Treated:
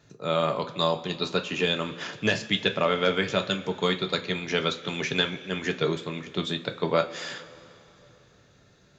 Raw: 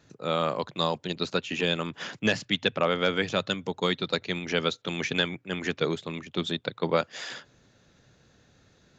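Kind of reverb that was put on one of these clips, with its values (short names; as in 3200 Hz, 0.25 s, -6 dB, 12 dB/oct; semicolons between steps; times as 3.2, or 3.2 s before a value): two-slope reverb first 0.23 s, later 3.2 s, from -20 dB, DRR 4.5 dB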